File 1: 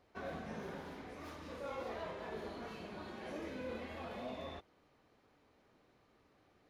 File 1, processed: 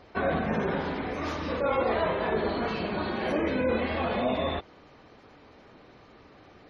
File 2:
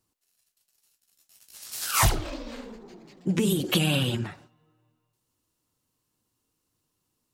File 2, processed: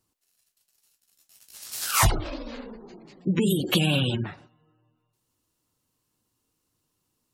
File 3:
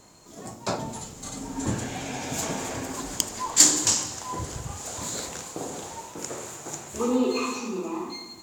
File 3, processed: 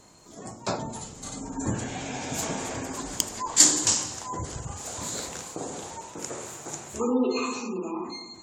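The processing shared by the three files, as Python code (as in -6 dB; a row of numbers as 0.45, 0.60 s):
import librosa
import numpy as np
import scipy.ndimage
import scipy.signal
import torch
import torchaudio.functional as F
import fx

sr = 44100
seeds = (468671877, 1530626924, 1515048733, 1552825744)

y = fx.spec_gate(x, sr, threshold_db=-30, keep='strong')
y = y * 10.0 ** (-30 / 20.0) / np.sqrt(np.mean(np.square(y)))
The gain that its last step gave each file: +17.0, +1.5, -1.0 dB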